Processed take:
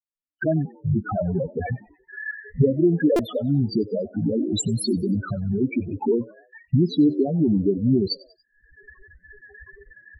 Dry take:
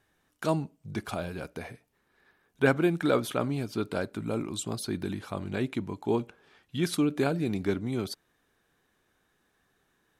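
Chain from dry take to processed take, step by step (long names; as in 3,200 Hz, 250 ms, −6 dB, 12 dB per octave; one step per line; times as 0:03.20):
camcorder AGC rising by 35 dB per second
soft clipping −10 dBFS, distortion −23 dB
spectral peaks only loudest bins 4
noise gate −54 dBFS, range −16 dB
noise reduction from a noise print of the clip's start 30 dB
0:05.58–0:06.00: parametric band 190 Hz −13.5 dB 0.28 octaves
0:07.74–0:08.67: healed spectral selection 500–3,500 Hz both
echo with shifted repeats 94 ms, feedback 46%, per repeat +87 Hz, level −23.5 dB
buffer that repeats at 0:03.16, samples 128, times 10
level +7 dB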